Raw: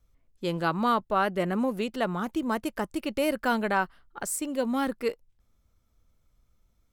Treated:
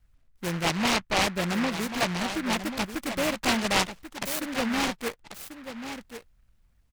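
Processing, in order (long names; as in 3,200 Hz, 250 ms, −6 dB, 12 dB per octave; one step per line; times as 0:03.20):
comb filter 1.2 ms, depth 45%
single-tap delay 1,089 ms −10 dB
short delay modulated by noise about 1,500 Hz, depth 0.21 ms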